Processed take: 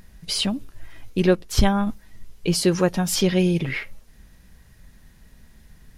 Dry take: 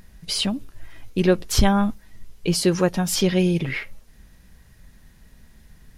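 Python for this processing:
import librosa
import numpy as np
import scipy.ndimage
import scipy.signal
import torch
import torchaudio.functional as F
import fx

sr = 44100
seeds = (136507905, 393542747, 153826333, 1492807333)

y = fx.upward_expand(x, sr, threshold_db=-26.0, expansion=1.5, at=(1.35, 1.87))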